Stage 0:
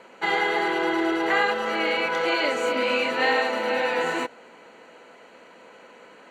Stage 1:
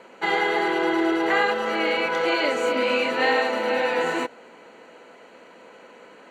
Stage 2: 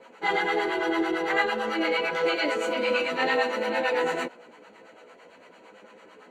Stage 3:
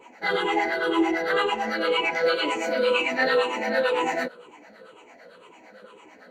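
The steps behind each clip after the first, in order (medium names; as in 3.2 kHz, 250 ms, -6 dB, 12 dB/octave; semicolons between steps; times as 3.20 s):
peaking EQ 340 Hz +2.5 dB 2 oct
chorus voices 4, 0.32 Hz, delay 13 ms, depth 3.7 ms; harmonic tremolo 8.9 Hz, depth 70%, crossover 610 Hz; trim +3 dB
drifting ripple filter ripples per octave 0.68, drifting -2 Hz, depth 13 dB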